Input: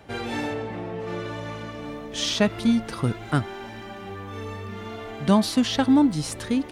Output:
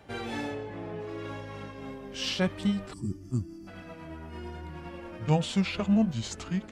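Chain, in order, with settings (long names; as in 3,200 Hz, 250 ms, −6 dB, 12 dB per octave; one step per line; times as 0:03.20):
pitch glide at a constant tempo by −5.5 semitones starting unshifted
gain on a spectral selection 0:02.93–0:03.68, 400–4,500 Hz −22 dB
level −5 dB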